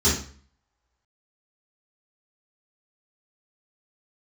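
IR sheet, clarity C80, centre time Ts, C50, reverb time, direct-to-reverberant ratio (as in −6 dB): 10.5 dB, 37 ms, 4.5 dB, 0.45 s, −12.0 dB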